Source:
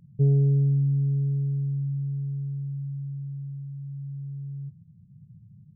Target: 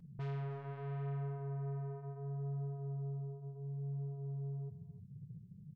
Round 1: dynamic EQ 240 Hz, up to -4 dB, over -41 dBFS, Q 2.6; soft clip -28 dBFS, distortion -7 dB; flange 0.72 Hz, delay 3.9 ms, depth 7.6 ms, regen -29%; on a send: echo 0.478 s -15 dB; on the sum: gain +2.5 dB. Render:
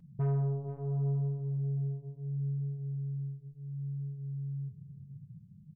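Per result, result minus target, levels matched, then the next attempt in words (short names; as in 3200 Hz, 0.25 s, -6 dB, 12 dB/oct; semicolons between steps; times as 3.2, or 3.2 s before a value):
echo 0.178 s late; soft clip: distortion -5 dB
dynamic EQ 240 Hz, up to -4 dB, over -41 dBFS, Q 2.6; soft clip -28 dBFS, distortion -7 dB; flange 0.72 Hz, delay 3.9 ms, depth 7.6 ms, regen -29%; on a send: echo 0.3 s -15 dB; on the sum: gain +2.5 dB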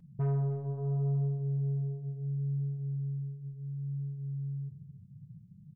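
soft clip: distortion -5 dB
dynamic EQ 240 Hz, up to -4 dB, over -41 dBFS, Q 2.6; soft clip -39 dBFS, distortion -2 dB; flange 0.72 Hz, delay 3.9 ms, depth 7.6 ms, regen -29%; on a send: echo 0.3 s -15 dB; on the sum: gain +2.5 dB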